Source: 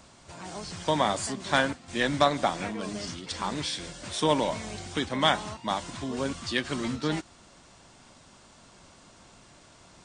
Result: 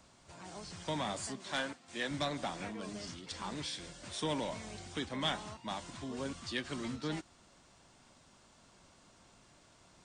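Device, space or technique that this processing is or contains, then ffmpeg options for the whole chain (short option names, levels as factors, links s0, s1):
one-band saturation: -filter_complex "[0:a]asettb=1/sr,asplit=3[s0][s1][s2];[s0]atrim=end=1.374[s3];[s1]atrim=start=1.37:end=2.11,asetpts=PTS-STARTPTS,afade=t=in:d=0.004:c=qsin,afade=t=out:st=0.736:d=0.004:c=qsin,highpass=f=320:p=1[s4];[s2]atrim=start=2.106[s5];[s3][s4]acrossfade=d=0.004:c1=hsin:c2=qsin[s6];[s6][s5]acrossfade=d=0.004:c1=qsin:c2=hsin,acrossover=split=340|2000[s7][s8][s9];[s8]asoftclip=type=tanh:threshold=0.0531[s10];[s7][s10][s9]amix=inputs=3:normalize=0,volume=0.376"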